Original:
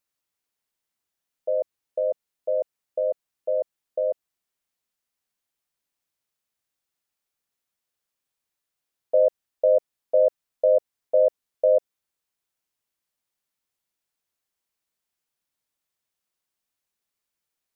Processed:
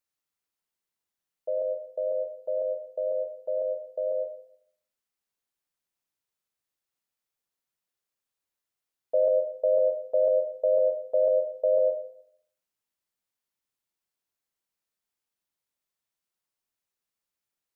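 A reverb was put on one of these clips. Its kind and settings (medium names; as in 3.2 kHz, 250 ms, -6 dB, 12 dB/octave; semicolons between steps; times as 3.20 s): plate-style reverb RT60 0.66 s, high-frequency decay 0.4×, pre-delay 85 ms, DRR 5 dB; trim -5 dB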